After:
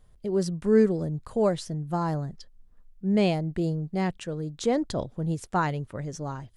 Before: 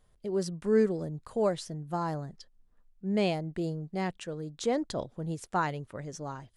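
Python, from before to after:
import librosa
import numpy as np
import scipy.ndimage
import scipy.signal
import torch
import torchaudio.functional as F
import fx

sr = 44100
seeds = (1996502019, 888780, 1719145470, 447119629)

y = fx.low_shelf(x, sr, hz=200.0, db=7.5)
y = y * librosa.db_to_amplitude(2.5)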